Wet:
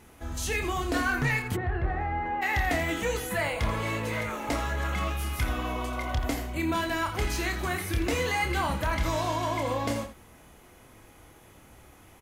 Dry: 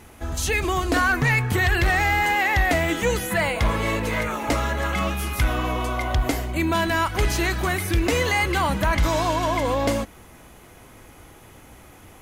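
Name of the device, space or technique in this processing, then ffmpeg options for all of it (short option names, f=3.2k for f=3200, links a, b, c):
slapback doubling: -filter_complex "[0:a]asplit=3[a][b][c];[b]adelay=28,volume=-6dB[d];[c]adelay=84,volume=-11dB[e];[a][d][e]amix=inputs=3:normalize=0,asplit=3[f][g][h];[f]afade=t=out:st=1.55:d=0.02[i];[g]lowpass=1k,afade=t=in:st=1.55:d=0.02,afade=t=out:st=2.41:d=0.02[j];[h]afade=t=in:st=2.41:d=0.02[k];[i][j][k]amix=inputs=3:normalize=0,volume=-7.5dB"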